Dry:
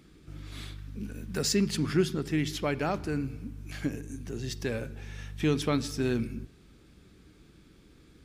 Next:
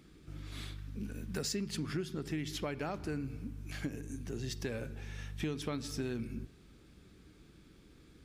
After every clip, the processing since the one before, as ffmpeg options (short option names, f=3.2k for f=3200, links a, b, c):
-af "acompressor=threshold=-31dB:ratio=6,volume=-2.5dB"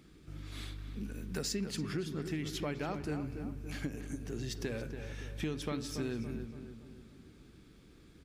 -filter_complex "[0:a]asplit=2[a][b];[b]adelay=283,lowpass=f=2.1k:p=1,volume=-8dB,asplit=2[c][d];[d]adelay=283,lowpass=f=2.1k:p=1,volume=0.5,asplit=2[e][f];[f]adelay=283,lowpass=f=2.1k:p=1,volume=0.5,asplit=2[g][h];[h]adelay=283,lowpass=f=2.1k:p=1,volume=0.5,asplit=2[i][j];[j]adelay=283,lowpass=f=2.1k:p=1,volume=0.5,asplit=2[k][l];[l]adelay=283,lowpass=f=2.1k:p=1,volume=0.5[m];[a][c][e][g][i][k][m]amix=inputs=7:normalize=0"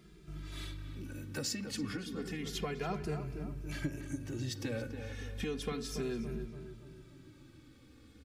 -filter_complex "[0:a]asplit=2[a][b];[b]adelay=2.5,afreqshift=-0.32[c];[a][c]amix=inputs=2:normalize=1,volume=3.5dB"